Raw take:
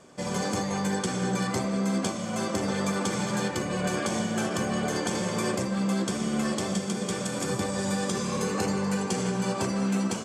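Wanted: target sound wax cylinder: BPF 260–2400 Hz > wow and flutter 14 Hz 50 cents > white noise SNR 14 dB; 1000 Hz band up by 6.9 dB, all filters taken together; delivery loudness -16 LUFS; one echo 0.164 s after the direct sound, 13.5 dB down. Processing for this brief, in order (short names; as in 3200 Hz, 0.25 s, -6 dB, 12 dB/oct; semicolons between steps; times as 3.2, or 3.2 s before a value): BPF 260–2400 Hz; bell 1000 Hz +9 dB; echo 0.164 s -13.5 dB; wow and flutter 14 Hz 50 cents; white noise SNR 14 dB; gain +12 dB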